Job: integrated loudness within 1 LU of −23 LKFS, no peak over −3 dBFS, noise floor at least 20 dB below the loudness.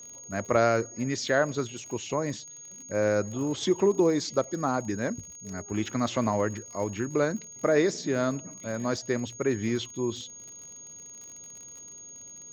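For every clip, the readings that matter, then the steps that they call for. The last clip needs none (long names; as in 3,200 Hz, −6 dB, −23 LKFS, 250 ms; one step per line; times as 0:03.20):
crackle rate 47 per second; interfering tone 6,600 Hz; level of the tone −43 dBFS; integrated loudness −28.5 LKFS; sample peak −9.5 dBFS; target loudness −23.0 LKFS
→ click removal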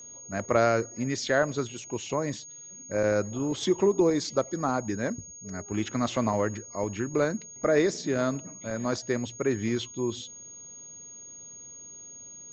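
crackle rate 0 per second; interfering tone 6,600 Hz; level of the tone −43 dBFS
→ notch filter 6,600 Hz, Q 30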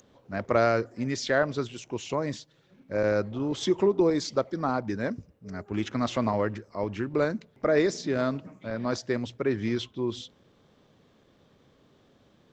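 interfering tone none found; integrated loudness −28.5 LKFS; sample peak −9.5 dBFS; target loudness −23.0 LKFS
→ level +5.5 dB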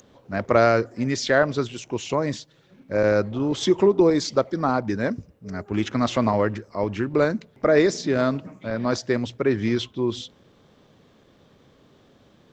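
integrated loudness −23.0 LKFS; sample peak −4.0 dBFS; background noise floor −57 dBFS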